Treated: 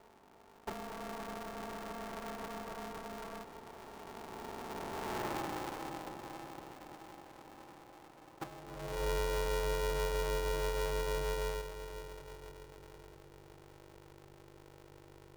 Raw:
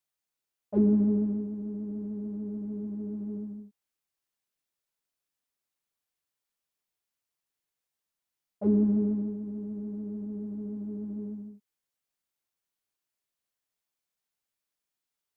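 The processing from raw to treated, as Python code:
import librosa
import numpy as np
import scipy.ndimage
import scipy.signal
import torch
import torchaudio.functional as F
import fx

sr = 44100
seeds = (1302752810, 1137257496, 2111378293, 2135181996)

p1 = fx.bin_compress(x, sr, power=0.4)
p2 = fx.doppler_pass(p1, sr, speed_mps=25, closest_m=4.2, pass_at_s=5.28)
p3 = scipy.signal.sosfilt(scipy.signal.butter(2, 75.0, 'highpass', fs=sr, output='sos'), p2)
p4 = fx.band_shelf(p3, sr, hz=650.0, db=9.0, octaves=1.1)
p5 = fx.over_compress(p4, sr, threshold_db=-50.0, ratio=-0.5)
p6 = fx.add_hum(p5, sr, base_hz=50, snr_db=18)
p7 = fx.leveller(p6, sr, passes=3)
p8 = p7 + fx.echo_feedback(p7, sr, ms=512, feedback_pct=50, wet_db=-12.0, dry=0)
p9 = fx.filter_sweep_highpass(p8, sr, from_hz=610.0, to_hz=120.0, start_s=8.64, end_s=9.25, q=1.3)
p10 = p9 * np.sign(np.sin(2.0 * np.pi * 240.0 * np.arange(len(p9)) / sr))
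y = p10 * librosa.db_to_amplitude(8.0)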